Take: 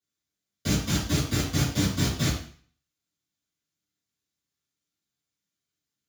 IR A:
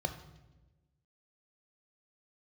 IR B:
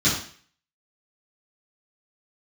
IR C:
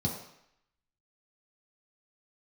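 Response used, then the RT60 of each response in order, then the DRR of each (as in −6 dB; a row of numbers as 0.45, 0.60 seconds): B; 1.1, 0.45, 0.75 seconds; 8.5, −12.0, −3.0 decibels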